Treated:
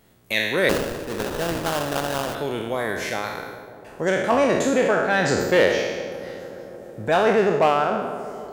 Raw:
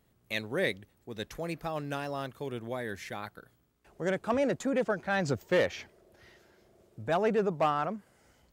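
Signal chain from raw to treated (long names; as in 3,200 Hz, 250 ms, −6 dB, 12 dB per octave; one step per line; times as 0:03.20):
peak hold with a decay on every bin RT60 1.01 s
parametric band 65 Hz −6.5 dB 2.9 octaves
notch filter 1,200 Hz, Q 20
in parallel at −1 dB: downward compressor, threshold −39 dBFS, peak gain reduction 17.5 dB
0:00.69–0:02.35: on the sum: sample-rate reduction 2,200 Hz, jitter 20%
on a send: delay with a low-pass on its return 148 ms, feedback 84%, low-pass 950 Hz, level −15.5 dB
on the sum: level +6.5 dB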